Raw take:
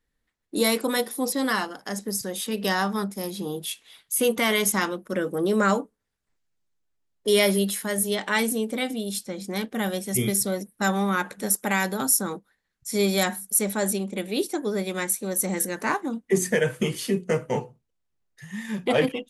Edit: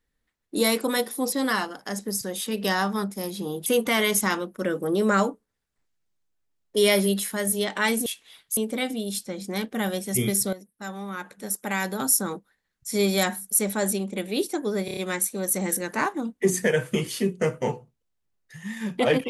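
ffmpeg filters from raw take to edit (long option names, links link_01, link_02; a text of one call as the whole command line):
ffmpeg -i in.wav -filter_complex "[0:a]asplit=9[link_01][link_02][link_03][link_04][link_05][link_06][link_07][link_08][link_09];[link_01]atrim=end=3.662[link_10];[link_02]atrim=start=4.168:end=8.572[link_11];[link_03]atrim=start=3.658:end=4.172[link_12];[link_04]atrim=start=8.568:end=10.53,asetpts=PTS-STARTPTS,afade=type=out:start_time=1.958:duration=0.004:curve=hsin:silence=0.211349[link_13];[link_05]atrim=start=10.53:end=14.882,asetpts=PTS-STARTPTS,afade=type=in:duration=1.59:curve=qua:silence=0.211349[link_14];[link_06]atrim=start=14.848:end=14.882[link_15];[link_07]atrim=start=14.848:end=14.882[link_16];[link_08]atrim=start=14.848:end=14.882[link_17];[link_09]atrim=start=14.848[link_18];[link_10][link_11]acrossfade=duration=0.004:curve1=hsin:curve2=hsin[link_19];[link_19][link_12]acrossfade=duration=0.004:curve1=hsin:curve2=hsin[link_20];[link_13][link_14]concat=n=2:v=0:a=1[link_21];[link_20][link_21]acrossfade=duration=0.004:curve1=hsin:curve2=hsin[link_22];[link_22][link_15]acrossfade=duration=0.004:curve1=hsin:curve2=hsin[link_23];[link_23][link_16]acrossfade=duration=0.004:curve1=hsin:curve2=hsin[link_24];[link_24][link_17]acrossfade=duration=0.004:curve1=hsin:curve2=hsin[link_25];[link_25][link_18]acrossfade=duration=0.004:curve1=hsin:curve2=hsin" out.wav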